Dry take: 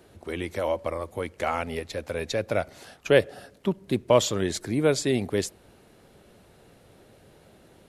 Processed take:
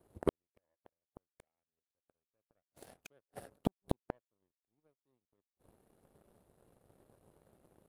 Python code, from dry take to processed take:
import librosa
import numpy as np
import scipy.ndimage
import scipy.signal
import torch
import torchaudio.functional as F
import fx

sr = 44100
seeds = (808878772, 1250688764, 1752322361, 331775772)

y = fx.gate_flip(x, sr, shuts_db=-25.0, range_db=-38)
y = fx.band_shelf(y, sr, hz=2700.0, db=-11.0, octaves=3.0)
y = fx.power_curve(y, sr, exponent=2.0)
y = y * librosa.db_to_amplitude(13.5)